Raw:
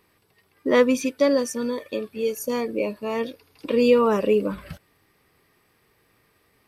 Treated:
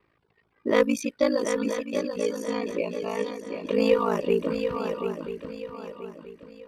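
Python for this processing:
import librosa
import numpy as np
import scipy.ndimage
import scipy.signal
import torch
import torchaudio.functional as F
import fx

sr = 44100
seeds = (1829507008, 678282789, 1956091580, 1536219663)

p1 = fx.dereverb_blind(x, sr, rt60_s=0.62)
p2 = fx.env_lowpass(p1, sr, base_hz=2600.0, full_db=-17.5)
p3 = p2 * np.sin(2.0 * np.pi * 27.0 * np.arange(len(p2)) / sr)
p4 = fx.cheby_harmonics(p3, sr, harmonics=(6, 8), levels_db=(-29, -32), full_scale_db=-7.5)
y = p4 + fx.echo_swing(p4, sr, ms=982, ratio=3, feedback_pct=35, wet_db=-7, dry=0)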